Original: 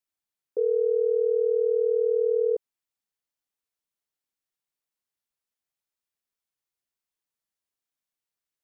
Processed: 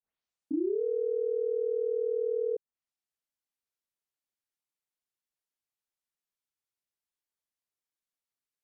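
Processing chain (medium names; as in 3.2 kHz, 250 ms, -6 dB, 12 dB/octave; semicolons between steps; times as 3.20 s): tape start-up on the opening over 0.82 s; low-pass that closes with the level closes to 550 Hz, closed at -24.5 dBFS; trim -5 dB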